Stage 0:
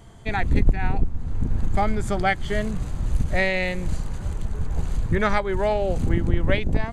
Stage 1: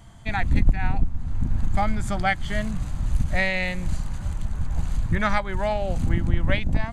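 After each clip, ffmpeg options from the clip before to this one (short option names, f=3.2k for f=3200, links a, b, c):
-af "equalizer=f=420:w=2.7:g=-14"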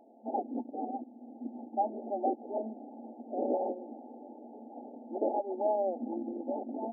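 -af "alimiter=limit=-16.5dB:level=0:latency=1:release=31,acrusher=samples=19:mix=1:aa=0.000001:lfo=1:lforange=11.4:lforate=2.7,afftfilt=real='re*between(b*sr/4096,220,890)':imag='im*between(b*sr/4096,220,890)':win_size=4096:overlap=0.75"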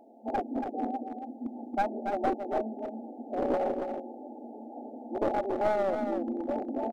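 -filter_complex "[0:a]aeval=exprs='clip(val(0),-1,0.0299)':c=same,asplit=2[a][b];[b]aecho=0:1:280:0.473[c];[a][c]amix=inputs=2:normalize=0,volume=3.5dB"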